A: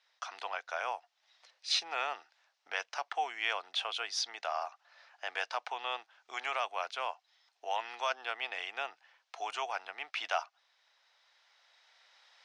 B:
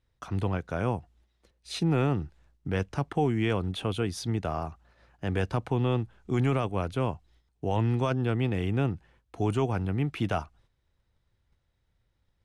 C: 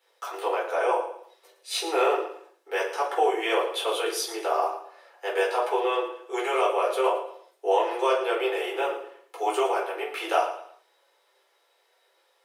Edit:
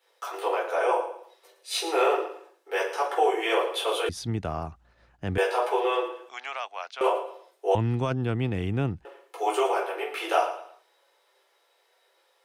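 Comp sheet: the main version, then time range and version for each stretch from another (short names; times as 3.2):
C
4.09–5.38 from B
6.29–7.01 from A
7.75–9.05 from B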